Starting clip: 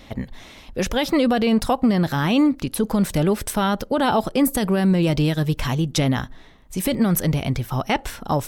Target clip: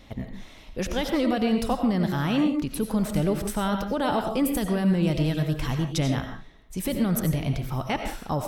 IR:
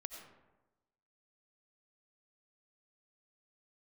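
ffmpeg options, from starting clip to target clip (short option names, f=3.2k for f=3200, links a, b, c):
-filter_complex "[0:a]lowshelf=f=180:g=4[a];[1:a]atrim=start_sample=2205,afade=t=out:st=0.24:d=0.01,atrim=end_sample=11025[b];[a][b]afir=irnorm=-1:irlink=0,volume=-2.5dB"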